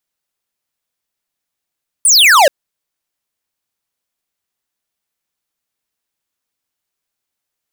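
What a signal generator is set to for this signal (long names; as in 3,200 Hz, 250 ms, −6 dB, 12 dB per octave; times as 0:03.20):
single falling chirp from 10,000 Hz, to 520 Hz, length 0.43 s square, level −7 dB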